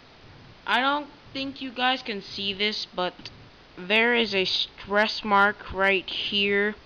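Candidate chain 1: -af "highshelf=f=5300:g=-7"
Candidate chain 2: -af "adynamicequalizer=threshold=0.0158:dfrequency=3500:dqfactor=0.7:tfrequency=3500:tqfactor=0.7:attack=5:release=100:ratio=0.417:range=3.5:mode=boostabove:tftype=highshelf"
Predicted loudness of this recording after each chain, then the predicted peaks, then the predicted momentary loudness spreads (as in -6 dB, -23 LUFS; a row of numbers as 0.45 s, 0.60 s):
-25.0 LUFS, -23.0 LUFS; -9.5 dBFS, -7.0 dBFS; 13 LU, 12 LU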